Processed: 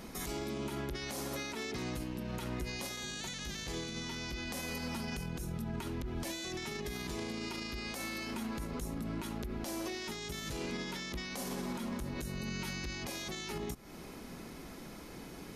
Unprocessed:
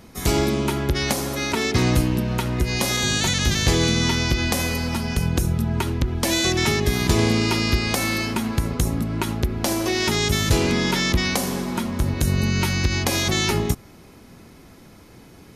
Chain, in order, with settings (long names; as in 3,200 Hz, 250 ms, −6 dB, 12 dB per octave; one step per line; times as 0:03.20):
parametric band 97 Hz −14.5 dB 0.5 octaves
downward compressor 6 to 1, threshold −32 dBFS, peak gain reduction 16 dB
brickwall limiter −30 dBFS, peak gain reduction 12.5 dB